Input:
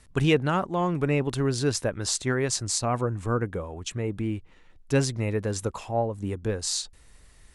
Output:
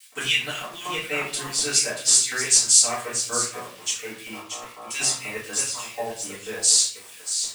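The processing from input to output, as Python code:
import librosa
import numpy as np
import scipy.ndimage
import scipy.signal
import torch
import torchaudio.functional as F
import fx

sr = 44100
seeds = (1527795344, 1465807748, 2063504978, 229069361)

y = fx.graphic_eq(x, sr, hz=(125, 500, 1000, 8000), db=(7, -8, -8, 9))
y = fx.quant_dither(y, sr, seeds[0], bits=8, dither='none')
y = fx.dmg_buzz(y, sr, base_hz=60.0, harmonics=23, level_db=-44.0, tilt_db=-1, odd_only=False, at=(4.32, 5.26), fade=0.02)
y = y + 10.0 ** (-9.0 / 20.0) * np.pad(y, (int(632 * sr / 1000.0), 0))[:len(y)]
y = fx.filter_lfo_highpass(y, sr, shape='square', hz=4.1, low_hz=790.0, high_hz=2800.0, q=1.2)
y = fx.room_shoebox(y, sr, seeds[1], volume_m3=44.0, walls='mixed', distance_m=2.1)
y = y * 10.0 ** (-3.5 / 20.0)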